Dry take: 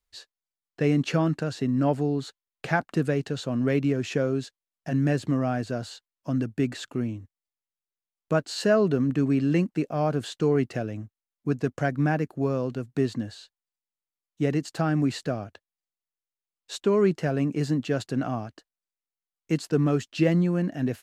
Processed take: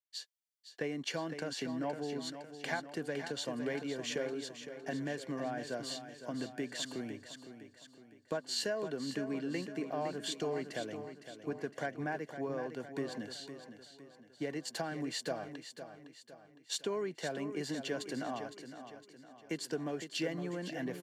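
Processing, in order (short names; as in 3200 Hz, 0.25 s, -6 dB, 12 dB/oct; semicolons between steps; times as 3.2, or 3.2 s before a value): HPF 670 Hz 6 dB/oct; compressor 6:1, threshold -35 dBFS, peak gain reduction 14.5 dB; notch comb 1300 Hz; on a send: feedback echo 0.51 s, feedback 56%, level -8 dB; on the sum: three-band expander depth 40%; gain +1 dB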